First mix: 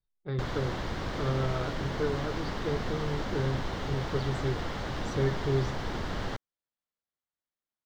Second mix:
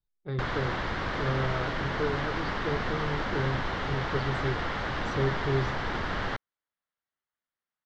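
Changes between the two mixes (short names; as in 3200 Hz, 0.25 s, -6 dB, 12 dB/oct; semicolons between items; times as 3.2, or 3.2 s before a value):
background: add bell 1600 Hz +8 dB 2 oct; master: add LPF 5600 Hz 12 dB/oct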